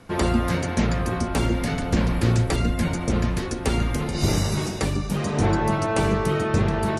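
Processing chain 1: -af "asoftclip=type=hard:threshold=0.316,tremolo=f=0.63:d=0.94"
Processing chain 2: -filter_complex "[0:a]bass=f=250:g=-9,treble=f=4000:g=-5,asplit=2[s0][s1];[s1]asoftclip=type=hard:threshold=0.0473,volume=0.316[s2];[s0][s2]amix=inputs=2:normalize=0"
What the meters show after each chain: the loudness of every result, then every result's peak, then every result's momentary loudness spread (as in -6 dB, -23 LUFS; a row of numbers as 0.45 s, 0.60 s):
-27.5 LUFS, -25.5 LUFS; -11.0 dBFS, -10.5 dBFS; 16 LU, 5 LU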